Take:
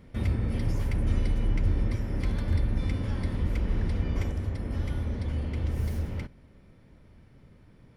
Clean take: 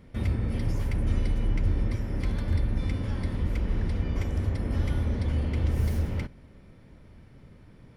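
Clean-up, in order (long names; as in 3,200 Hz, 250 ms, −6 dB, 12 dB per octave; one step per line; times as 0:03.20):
level 0 dB, from 0:04.32 +3.5 dB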